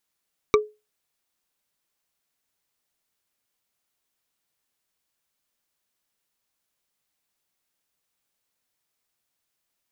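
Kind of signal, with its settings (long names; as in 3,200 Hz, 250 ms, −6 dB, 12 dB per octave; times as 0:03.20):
struck wood bar, lowest mode 424 Hz, decay 0.25 s, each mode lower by 3 dB, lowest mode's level −10.5 dB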